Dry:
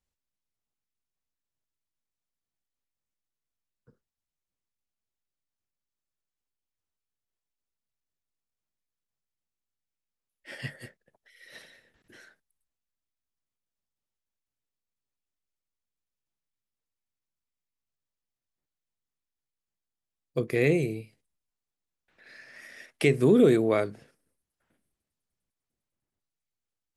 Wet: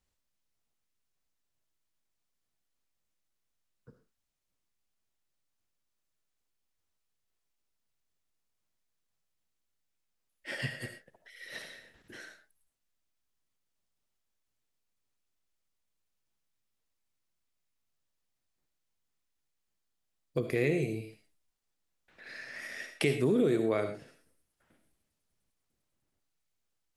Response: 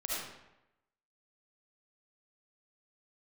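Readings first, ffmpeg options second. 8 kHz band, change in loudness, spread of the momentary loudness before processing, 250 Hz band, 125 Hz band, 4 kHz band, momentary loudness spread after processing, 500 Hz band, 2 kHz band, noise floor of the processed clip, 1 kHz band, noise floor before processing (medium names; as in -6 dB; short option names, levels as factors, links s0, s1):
-1.5 dB, -8.0 dB, 20 LU, -6.0 dB, -5.5 dB, -0.5 dB, 22 LU, -6.0 dB, -2.5 dB, -82 dBFS, -5.0 dB, under -85 dBFS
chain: -filter_complex "[0:a]highshelf=f=9000:g=-6,acompressor=threshold=0.0112:ratio=2,asplit=2[s0][s1];[1:a]atrim=start_sample=2205,atrim=end_sample=6174,highshelf=f=4400:g=9[s2];[s1][s2]afir=irnorm=-1:irlink=0,volume=0.335[s3];[s0][s3]amix=inputs=2:normalize=0,volume=1.41"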